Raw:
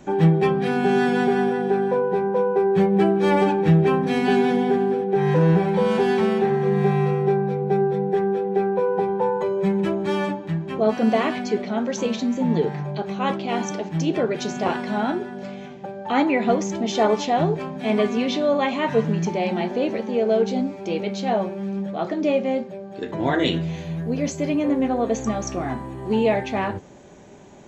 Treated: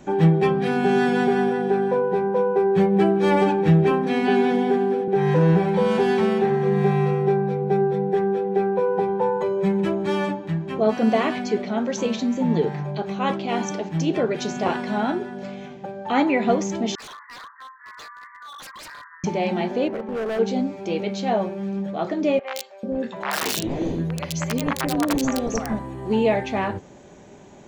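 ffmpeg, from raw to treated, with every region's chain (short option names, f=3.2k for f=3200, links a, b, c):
-filter_complex "[0:a]asettb=1/sr,asplit=3[a][b][c];[a]atrim=end=3.914[d];[b]atrim=start=3.91:end=5.08,asetpts=PTS-STARTPTS,afade=t=in:d=0.004:c=qsin,afade=t=out:st=1.166:d=0.004:c=qsin,acrossover=split=4200[e][f];[f]acompressor=threshold=-49dB:ratio=4:attack=1:release=60[g];[e][g]amix=inputs=2:normalize=0,highpass=f=180:w=0.5412,highpass=f=180:w=1.3066[h];[c]atrim=start=5.076[i];[d][h]acrossfade=d=0.004:c1=hsin:c2=qsin[j];[j][i]acrossfade=d=0.004:c1=qsin:c2=hsin,asettb=1/sr,asplit=3[k][l][m];[k]atrim=end=16.954[n];[l]atrim=start=16.95:end=19.24,asetpts=PTS-STARTPTS,afade=t=in:d=0.004:c=qsin,afade=t=out:st=2.286:d=0.004:c=qsin,asuperpass=centerf=1400:order=20:qfactor=1.4,aeval=exprs='0.0178*(abs(mod(val(0)/0.0178+3,4)-2)-1)':c=same[o];[m]atrim=start=19.236[p];[n][o]acrossfade=d=0.004:c1=hsin:c2=qsin[q];[q][p]acrossfade=d=0.004:c1=qsin:c2=hsin,asettb=1/sr,asplit=3[r][s][t];[r]atrim=end=19.884[u];[s]atrim=start=19.88:end=20.39,asetpts=PTS-STARTPTS,afade=t=in:d=0.004:c=qsin,afade=t=out:st=0.506:d=0.004:c=qsin,lowpass=1.6k,lowshelf=f=200:g=-6.5,volume=24dB,asoftclip=hard,volume=-24dB[v];[t]atrim=start=20.386[w];[u][v]acrossfade=d=0.004:c1=hsin:c2=qsin[x];[x][w]acrossfade=d=0.004:c1=qsin:c2=hsin,asettb=1/sr,asplit=3[y][z][aa];[y]atrim=end=22.394[ab];[z]atrim=start=22.39:end=25.79,asetpts=PTS-STARTPTS,afade=t=in:d=0.004:c=qsin,afade=t=out:st=3.396:d=0.004:c=qsin,aeval=exprs='(mod(5.01*val(0)+1,2)-1)/5.01':c=same,acrossover=split=620|2800[ac][ad][ae];[ae]adelay=80[af];[ac]adelay=440[ag];[ag][ad][af]amix=inputs=3:normalize=0,atrim=end_sample=149940[ah];[aa]atrim=start=25.786[ai];[ab][ah]acrossfade=d=0.004:c1=hsin:c2=qsin[aj];[aj][ai]acrossfade=d=0.004:c1=qsin:c2=hsin"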